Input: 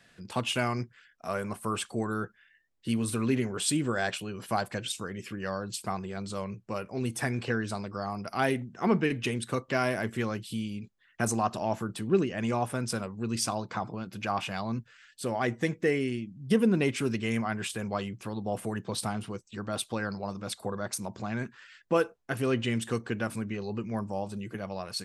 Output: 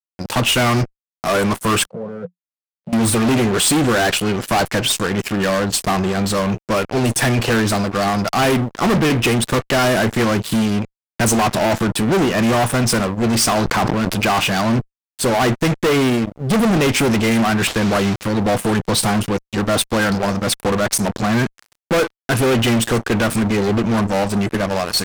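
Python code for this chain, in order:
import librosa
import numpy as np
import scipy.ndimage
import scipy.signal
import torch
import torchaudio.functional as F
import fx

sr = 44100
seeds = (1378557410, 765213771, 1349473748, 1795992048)

y = fx.delta_mod(x, sr, bps=32000, step_db=-41.5, at=(17.67, 18.23))
y = fx.fuzz(y, sr, gain_db=37.0, gate_db=-44.0)
y = fx.double_bandpass(y, sr, hz=300.0, octaves=1.5, at=(1.86, 2.93))
y = fx.sustainer(y, sr, db_per_s=25.0, at=(13.45, 14.27))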